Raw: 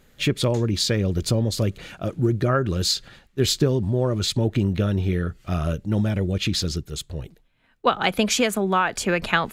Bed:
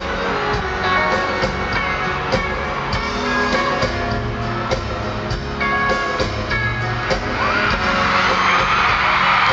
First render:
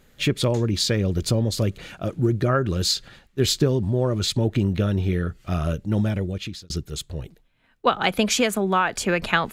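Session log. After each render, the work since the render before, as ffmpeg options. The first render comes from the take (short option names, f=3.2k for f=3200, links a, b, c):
-filter_complex "[0:a]asplit=2[a][b];[a]atrim=end=6.7,asetpts=PTS-STARTPTS,afade=t=out:st=6.07:d=0.63[c];[b]atrim=start=6.7,asetpts=PTS-STARTPTS,afade=t=in:d=0.004:c=hsin[d];[c][d]concat=n=2:v=0:a=1"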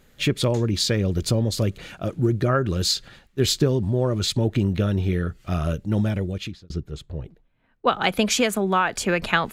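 -filter_complex "[0:a]asplit=3[a][b][c];[a]afade=t=out:st=6.51:d=0.02[d];[b]lowpass=f=1.2k:p=1,afade=t=in:st=6.51:d=0.02,afade=t=out:st=7.87:d=0.02[e];[c]afade=t=in:st=7.87:d=0.02[f];[d][e][f]amix=inputs=3:normalize=0"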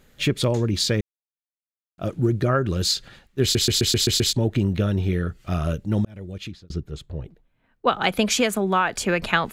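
-filter_complex "[0:a]asplit=11[a][b][c][d][e][f][g][h][i][j][k];[a]atrim=end=1.01,asetpts=PTS-STARTPTS,afade=t=out:st=1.006:d=0.004:c=hsin[l];[b]atrim=start=1.01:end=1.98,asetpts=PTS-STARTPTS,volume=0[m];[c]atrim=start=1.98:end=3.552,asetpts=PTS-STARTPTS,afade=t=in:d=0.004:c=hsin[n];[d]atrim=start=3.418:end=3.552[o];[e]atrim=start=3.418:end=3.552[p];[f]atrim=start=3.418:end=3.552[q];[g]atrim=start=3.418:end=3.552[r];[h]atrim=start=3.418:end=3.552[s];[i]atrim=start=3.418:end=3.552[t];[j]atrim=start=4.328:end=6.05,asetpts=PTS-STARTPTS,afade=t=out:st=1.718:d=0.004:c=hsin[u];[k]atrim=start=6.05,asetpts=PTS-STARTPTS,afade=t=in:d=0.54[v];[l][m][n]concat=n=3:v=0:a=1[w];[w][o]acrossfade=d=0.004:c1=hsin:c2=hsin[x];[x][p]acrossfade=d=0.004:c1=hsin:c2=hsin[y];[y][q]acrossfade=d=0.004:c1=hsin:c2=hsin[z];[z][r]acrossfade=d=0.004:c1=hsin:c2=hsin[aa];[aa][s]acrossfade=d=0.004:c1=hsin:c2=hsin[ab];[ab][t]acrossfade=d=0.004:c1=hsin:c2=hsin[ac];[u][v]concat=n=2:v=0:a=1[ad];[ac][ad]acrossfade=d=0.004:c1=hsin:c2=hsin"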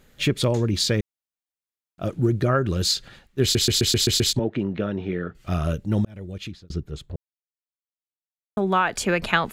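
-filter_complex "[0:a]asettb=1/sr,asplit=3[a][b][c];[a]atrim=end=4.394[d];[b]atrim=start=4.39:end=5.35,asetpts=PTS-STARTPTS,afade=t=in:d=0.004:c=qsin,afade=t=out:st=0.956:d=0.004:c=qsin,highpass=200,lowpass=2.5k[e];[c]atrim=start=5.346[f];[d][e]acrossfade=d=0.004:c1=hsin:c2=qsin[g];[g][f]acrossfade=d=0.004:c1=qsin:c2=hsin,asplit=3[h][i][j];[h]atrim=end=7.16,asetpts=PTS-STARTPTS,afade=t=out:st=7.156:d=0.004:c=hsin[k];[i]atrim=start=7.16:end=8.57,asetpts=PTS-STARTPTS,volume=0[l];[j]atrim=start=8.57,asetpts=PTS-STARTPTS,afade=t=in:d=0.004:c=hsin[m];[k][l][m]concat=n=3:v=0:a=1"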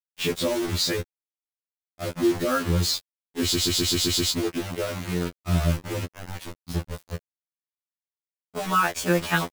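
-af "acrusher=bits=4:mix=0:aa=0.000001,afftfilt=real='re*2*eq(mod(b,4),0)':imag='im*2*eq(mod(b,4),0)':win_size=2048:overlap=0.75"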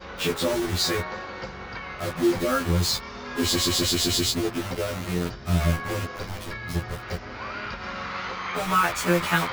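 -filter_complex "[1:a]volume=-16.5dB[a];[0:a][a]amix=inputs=2:normalize=0"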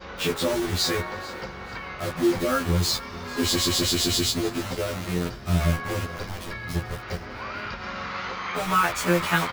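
-af "aecho=1:1:442|884|1326:0.112|0.0359|0.0115"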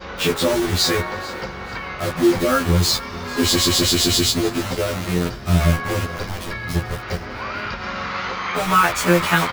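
-af "volume=6dB,alimiter=limit=-2dB:level=0:latency=1"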